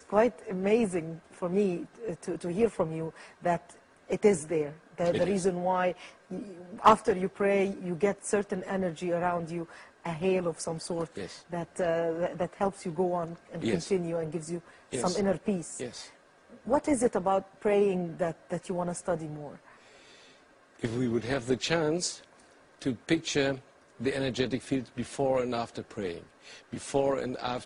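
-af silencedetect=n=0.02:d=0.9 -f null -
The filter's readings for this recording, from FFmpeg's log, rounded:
silence_start: 19.49
silence_end: 20.83 | silence_duration: 1.35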